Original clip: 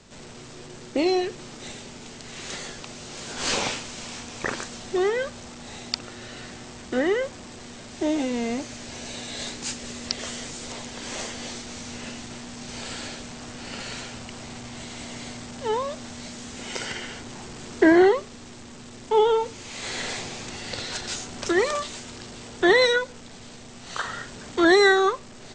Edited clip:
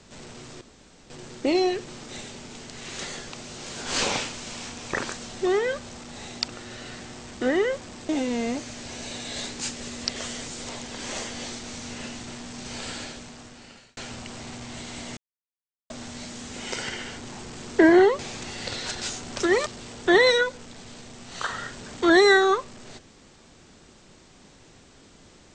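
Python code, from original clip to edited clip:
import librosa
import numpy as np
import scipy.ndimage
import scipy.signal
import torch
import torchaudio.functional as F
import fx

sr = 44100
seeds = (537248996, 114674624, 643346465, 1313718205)

y = fx.edit(x, sr, fx.insert_room_tone(at_s=0.61, length_s=0.49),
    fx.cut(start_s=7.6, length_s=0.52),
    fx.fade_out_span(start_s=12.93, length_s=1.07),
    fx.silence(start_s=15.2, length_s=0.73),
    fx.cut(start_s=18.22, length_s=2.03),
    fx.cut(start_s=21.72, length_s=0.49), tone=tone)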